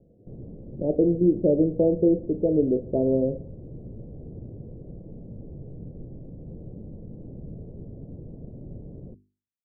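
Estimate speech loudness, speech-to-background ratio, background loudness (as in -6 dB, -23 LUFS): -23.0 LUFS, 19.0 dB, -42.0 LUFS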